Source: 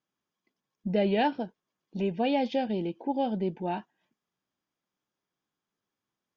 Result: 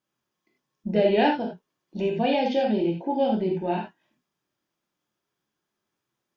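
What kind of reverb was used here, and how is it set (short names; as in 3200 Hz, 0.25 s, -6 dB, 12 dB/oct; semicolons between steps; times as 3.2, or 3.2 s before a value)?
non-linear reverb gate 0.11 s flat, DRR -0.5 dB; gain +2 dB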